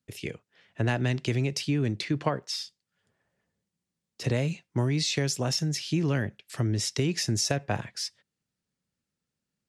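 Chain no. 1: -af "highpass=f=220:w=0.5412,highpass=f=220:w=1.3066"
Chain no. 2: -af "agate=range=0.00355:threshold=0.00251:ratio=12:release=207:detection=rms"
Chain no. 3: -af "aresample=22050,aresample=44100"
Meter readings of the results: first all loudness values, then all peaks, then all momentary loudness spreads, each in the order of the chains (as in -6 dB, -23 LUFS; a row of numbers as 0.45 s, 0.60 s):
-31.0 LUFS, -29.0 LUFS, -29.0 LUFS; -13.5 dBFS, -11.0 dBFS, -11.0 dBFS; 10 LU, 9 LU, 9 LU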